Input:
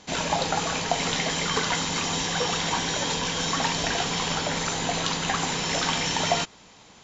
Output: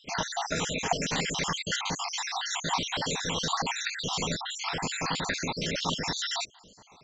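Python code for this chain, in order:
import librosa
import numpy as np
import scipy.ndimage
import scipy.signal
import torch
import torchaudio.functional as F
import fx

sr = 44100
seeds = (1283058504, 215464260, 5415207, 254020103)

y = fx.spec_dropout(x, sr, seeds[0], share_pct=62)
y = fx.high_shelf(y, sr, hz=3500.0, db=-5.0, at=(5.67, 6.08))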